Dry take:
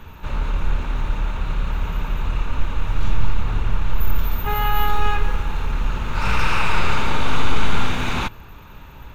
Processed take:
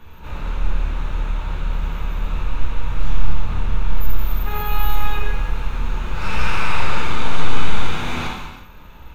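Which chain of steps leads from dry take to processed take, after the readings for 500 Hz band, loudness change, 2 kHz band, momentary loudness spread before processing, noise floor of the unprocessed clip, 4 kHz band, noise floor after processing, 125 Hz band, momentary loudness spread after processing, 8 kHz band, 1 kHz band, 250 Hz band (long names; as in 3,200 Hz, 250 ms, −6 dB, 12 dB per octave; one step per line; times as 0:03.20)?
−1.5 dB, −1.5 dB, −1.5 dB, 6 LU, −41 dBFS, −1.5 dB, −39 dBFS, −1.0 dB, 5 LU, −1.5 dB, −2.5 dB, −1.5 dB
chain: reverb whose tail is shaped and stops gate 420 ms falling, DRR −3.5 dB
level −6.5 dB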